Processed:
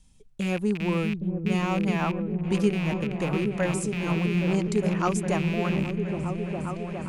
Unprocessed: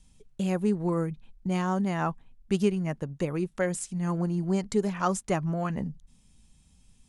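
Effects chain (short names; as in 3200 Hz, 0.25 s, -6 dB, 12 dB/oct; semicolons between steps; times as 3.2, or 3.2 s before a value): rattling part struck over -34 dBFS, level -25 dBFS; on a send: repeats that get brighter 0.409 s, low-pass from 200 Hz, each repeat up 1 oct, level 0 dB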